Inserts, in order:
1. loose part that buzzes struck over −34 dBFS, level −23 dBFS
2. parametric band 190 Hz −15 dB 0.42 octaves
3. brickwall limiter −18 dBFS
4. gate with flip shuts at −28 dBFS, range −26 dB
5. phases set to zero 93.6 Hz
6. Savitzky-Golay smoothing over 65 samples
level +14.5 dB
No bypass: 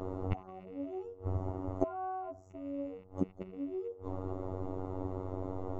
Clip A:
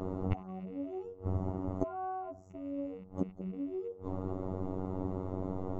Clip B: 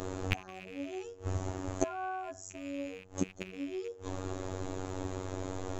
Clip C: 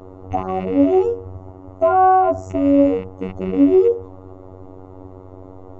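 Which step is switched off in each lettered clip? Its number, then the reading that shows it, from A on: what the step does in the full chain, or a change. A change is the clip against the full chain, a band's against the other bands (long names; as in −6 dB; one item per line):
2, 250 Hz band +2.0 dB
6, 2 kHz band +15.5 dB
4, change in momentary loudness spread +7 LU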